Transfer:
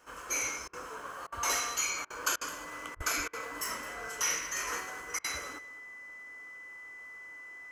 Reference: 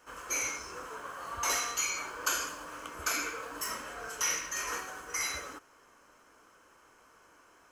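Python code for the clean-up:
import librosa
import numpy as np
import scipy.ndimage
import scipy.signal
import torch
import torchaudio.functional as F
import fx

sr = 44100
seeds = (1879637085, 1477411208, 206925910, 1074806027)

y = fx.notch(x, sr, hz=2000.0, q=30.0)
y = fx.highpass(y, sr, hz=140.0, slope=24, at=(2.95, 3.07), fade=0.02)
y = fx.fix_interpolate(y, sr, at_s=(0.68, 1.27, 2.05, 2.36, 2.95, 3.28, 5.19), length_ms=51.0)
y = fx.fix_echo_inverse(y, sr, delay_ms=212, level_db=-17.0)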